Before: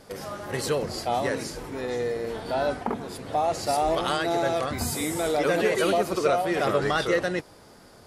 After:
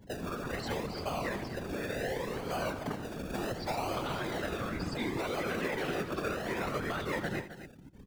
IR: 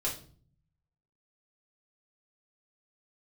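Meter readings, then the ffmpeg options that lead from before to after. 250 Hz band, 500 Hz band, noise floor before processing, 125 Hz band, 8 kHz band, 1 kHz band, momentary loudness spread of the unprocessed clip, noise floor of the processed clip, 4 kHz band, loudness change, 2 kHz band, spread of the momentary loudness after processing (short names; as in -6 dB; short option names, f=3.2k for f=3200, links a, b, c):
-6.5 dB, -11.0 dB, -51 dBFS, -4.0 dB, -13.0 dB, -10.5 dB, 9 LU, -51 dBFS, -8.5 dB, -9.0 dB, -6.5 dB, 5 LU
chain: -filter_complex "[0:a]highpass=110,aemphasis=mode=reproduction:type=bsi,afftfilt=real='re*gte(hypot(re,im),0.0178)':imag='im*gte(hypot(re,im),0.0178)':win_size=1024:overlap=0.75,acrossover=split=260|1000[a][b][c];[a]acompressor=threshold=-42dB:ratio=4[d];[b]acompressor=threshold=-38dB:ratio=4[e];[c]acompressor=threshold=-39dB:ratio=4[f];[d][e][f]amix=inputs=3:normalize=0,acrossover=split=260|900[g][h][i];[h]acrusher=samples=34:mix=1:aa=0.000001:lfo=1:lforange=20.4:lforate=0.69[j];[g][j][i]amix=inputs=3:normalize=0,asoftclip=type=hard:threshold=-28dB,afftfilt=real='hypot(re,im)*cos(2*PI*random(0))':imag='hypot(re,im)*sin(2*PI*random(1))':win_size=512:overlap=0.75,aecho=1:1:84|263:0.2|0.251,adynamicequalizer=threshold=0.00141:dfrequency=4500:dqfactor=0.7:tfrequency=4500:tqfactor=0.7:attack=5:release=100:ratio=0.375:range=2.5:mode=cutabove:tftype=highshelf,volume=6.5dB"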